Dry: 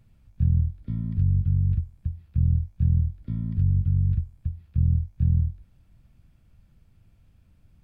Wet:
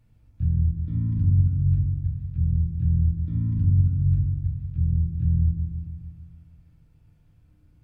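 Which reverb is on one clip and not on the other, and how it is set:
feedback delay network reverb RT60 1.5 s, low-frequency decay 1.5×, high-frequency decay 0.3×, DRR −1.5 dB
level −5 dB

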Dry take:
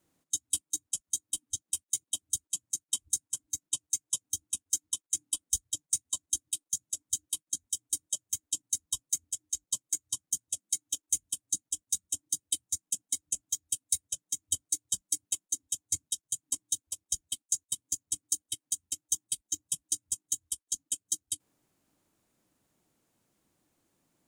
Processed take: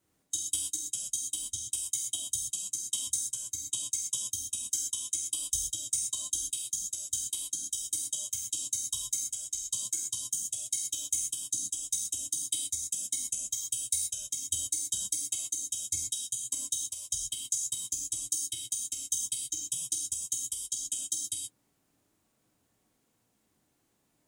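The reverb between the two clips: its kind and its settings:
reverb whose tail is shaped and stops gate 150 ms flat, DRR −1.5 dB
level −2.5 dB

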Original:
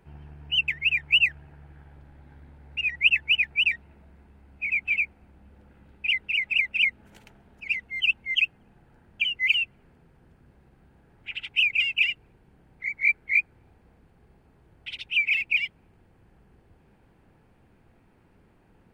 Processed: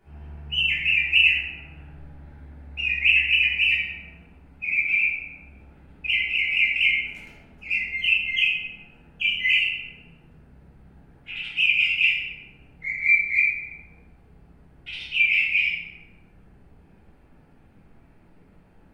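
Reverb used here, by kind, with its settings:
rectangular room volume 370 cubic metres, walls mixed, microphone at 3.3 metres
level −6 dB

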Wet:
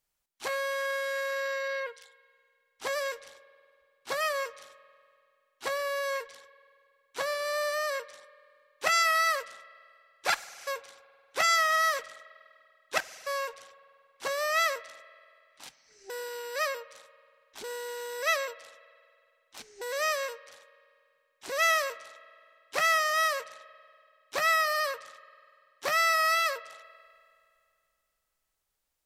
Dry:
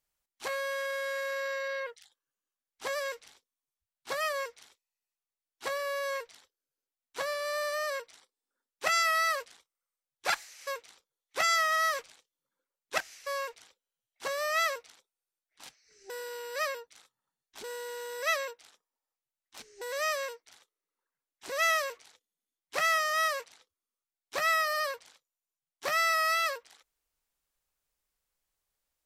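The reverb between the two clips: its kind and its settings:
spring reverb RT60 2.4 s, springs 47 ms, chirp 30 ms, DRR 18 dB
level +2 dB

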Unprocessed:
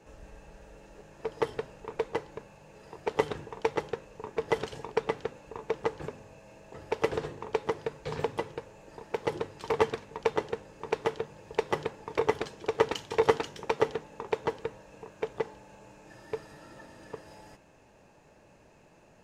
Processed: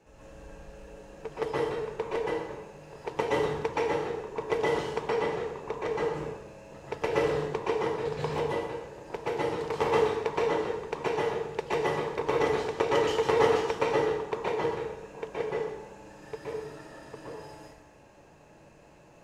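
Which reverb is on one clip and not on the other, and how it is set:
dense smooth reverb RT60 0.95 s, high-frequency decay 0.8×, pre-delay 110 ms, DRR −7 dB
level −4.5 dB

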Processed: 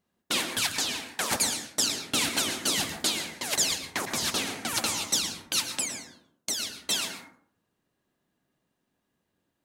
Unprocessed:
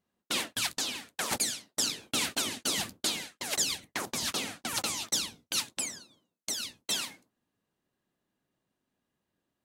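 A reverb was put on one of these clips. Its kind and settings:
dense smooth reverb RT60 0.56 s, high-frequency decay 0.4×, pre-delay 100 ms, DRR 6 dB
level +3.5 dB

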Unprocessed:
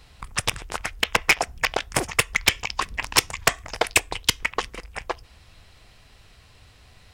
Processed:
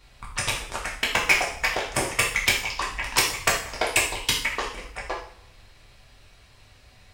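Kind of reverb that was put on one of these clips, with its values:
coupled-rooms reverb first 0.53 s, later 1.9 s, from −25 dB, DRR −4.5 dB
level −6 dB

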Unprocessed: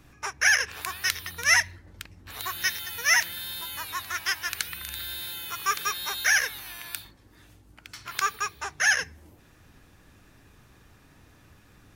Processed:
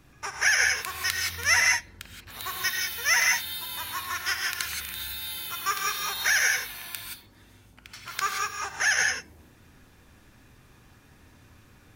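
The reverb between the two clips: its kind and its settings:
reverb whose tail is shaped and stops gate 200 ms rising, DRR 0.5 dB
level −2 dB

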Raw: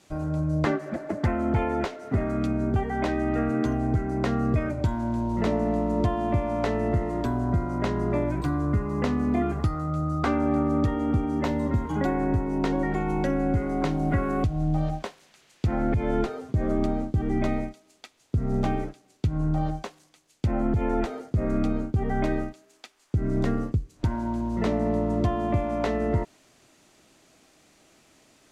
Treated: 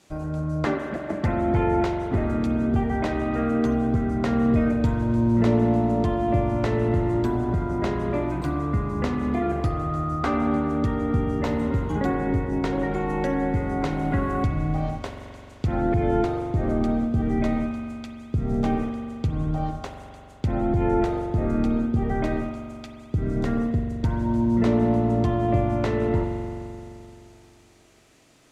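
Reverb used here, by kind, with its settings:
spring reverb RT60 2.8 s, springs 43 ms, chirp 60 ms, DRR 3.5 dB

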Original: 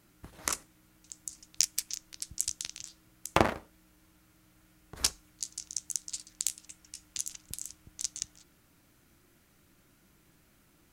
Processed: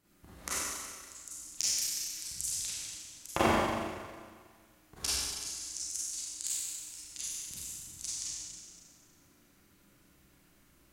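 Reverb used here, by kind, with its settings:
four-comb reverb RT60 1.7 s, combs from 31 ms, DRR −9.5 dB
level −9.5 dB

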